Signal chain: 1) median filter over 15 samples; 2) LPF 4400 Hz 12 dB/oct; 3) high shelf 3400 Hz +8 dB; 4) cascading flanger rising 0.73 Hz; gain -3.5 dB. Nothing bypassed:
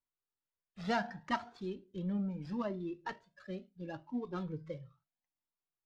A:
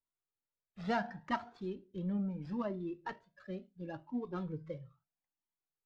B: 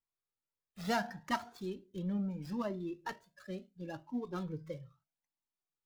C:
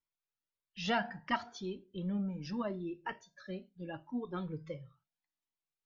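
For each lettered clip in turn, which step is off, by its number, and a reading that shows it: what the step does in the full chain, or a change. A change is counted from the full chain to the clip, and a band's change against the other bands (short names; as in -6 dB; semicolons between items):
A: 3, 4 kHz band -4.0 dB; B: 2, 4 kHz band +2.0 dB; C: 1, 4 kHz band +5.0 dB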